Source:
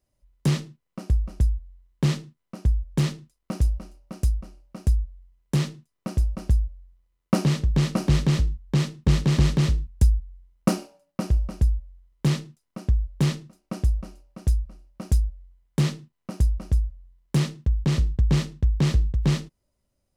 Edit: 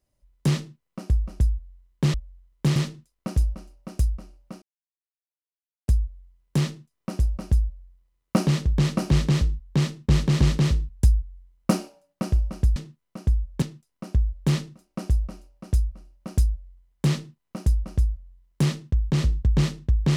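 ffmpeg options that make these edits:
-filter_complex "[0:a]asplit=6[a][b][c][d][e][f];[a]atrim=end=2.142[g];[b]atrim=start=11.738:end=12.362[h];[c]atrim=start=2.998:end=4.86,asetpts=PTS-STARTPTS,afade=t=out:st=1.858:d=0.004:c=hsin,apad=pad_dur=1.26[i];[d]atrim=start=4.86:end=11.742,asetpts=PTS-STARTPTS,afade=t=in:d=0.004:c=hsin[j];[e]atrim=start=2.138:end=3.002[k];[f]atrim=start=12.358[l];[g][h]acrossfade=d=0.004:c1=hsin:c2=hsin[m];[i][j]concat=n=2:v=0:a=1[n];[m][n]acrossfade=d=0.004:c1=hsin:c2=hsin[o];[o][k]acrossfade=d=0.004:c1=hsin:c2=hsin[p];[p][l]acrossfade=d=0.004:c1=hsin:c2=hsin"

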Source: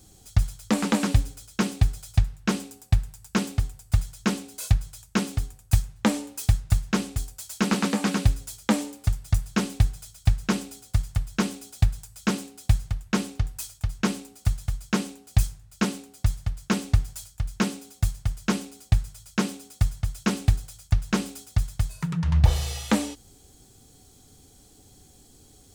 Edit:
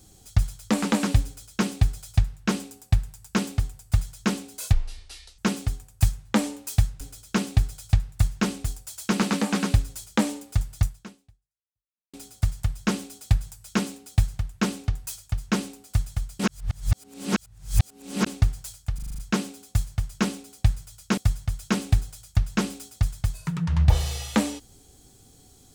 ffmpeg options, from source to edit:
-filter_complex "[0:a]asplit=15[a][b][c][d][e][f][g][h][i][j][k][l][m][n][o];[a]atrim=end=4.734[p];[b]atrim=start=4.73:end=5.09,asetpts=PTS-STARTPTS,asetrate=24255,aresample=44100,atrim=end_sample=28865,asetpts=PTS-STARTPTS[q];[c]atrim=start=5.086:end=6.712[r];[d]atrim=start=1.248:end=2.442[s];[e]atrim=start=6.708:end=10.65,asetpts=PTS-STARTPTS,afade=t=out:st=2.632:d=1.31:c=exp[t];[f]atrim=start=10.65:end=14.912,asetpts=PTS-STARTPTS,afade=t=in:d=0.004:c=hsin[u];[g]atrim=start=14.908:end=16.782,asetpts=PTS-STARTPTS,areverse[v];[h]atrim=start=16.778:end=17.502[w];[i]atrim=start=17.458:end=17.502[x];[j]atrim=start=17.458:end=17.502[y];[k]atrim=start=17.458:end=17.502[z];[l]atrim=start=17.458:end=17.502[aa];[m]atrim=start=17.458:end=17.502[ab];[n]atrim=start=17.458:end=19.452[ac];[o]atrim=start=19.728[ad];[p][q]acrossfade=d=0.004:c1=hsin:c2=hsin[ae];[ae][r]acrossfade=d=0.004:c1=hsin:c2=hsin[af];[af][s]acrossfade=d=0.004:c1=hsin:c2=hsin[ag];[t][u]concat=n=2:v=0:a=1[ah];[ag][ah]acrossfade=d=0.004:c1=hsin:c2=hsin[ai];[ai][v]acrossfade=d=0.004:c1=hsin:c2=hsin[aj];[aj][w]acrossfade=d=0.004:c1=hsin:c2=hsin[ak];[ak][x]acrossfade=d=0.004:c1=hsin:c2=hsin[al];[al][y]acrossfade=d=0.004:c1=hsin:c2=hsin[am];[am][z]acrossfade=d=0.004:c1=hsin:c2=hsin[an];[an][aa]acrossfade=d=0.004:c1=hsin:c2=hsin[ao];[ao][ab]acrossfade=d=0.004:c1=hsin:c2=hsin[ap];[ap][ac]acrossfade=d=0.004:c1=hsin:c2=hsin[aq];[aq][ad]acrossfade=d=0.004:c1=hsin:c2=hsin"

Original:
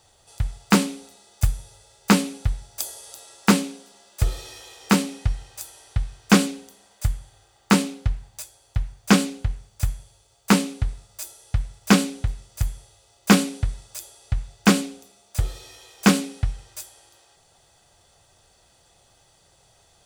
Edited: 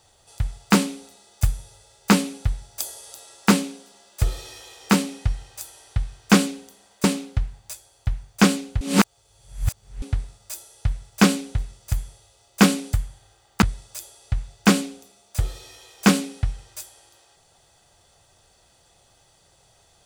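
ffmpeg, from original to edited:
-filter_complex "[0:a]asplit=6[a][b][c][d][e][f];[a]atrim=end=7.042[g];[b]atrim=start=7.728:end=9.502[h];[c]atrim=start=9.498:end=10.712,asetpts=PTS-STARTPTS,areverse[i];[d]atrim=start=10.708:end=13.622[j];[e]atrim=start=7.038:end=7.732[k];[f]atrim=start=13.618[l];[g][h]acrossfade=d=0.004:c1=hsin:c2=hsin[m];[m][i]acrossfade=d=0.004:c1=hsin:c2=hsin[n];[n][j]acrossfade=d=0.004:c1=hsin:c2=hsin[o];[o][k]acrossfade=d=0.004:c1=hsin:c2=hsin[p];[p][l]acrossfade=d=0.004:c1=hsin:c2=hsin"

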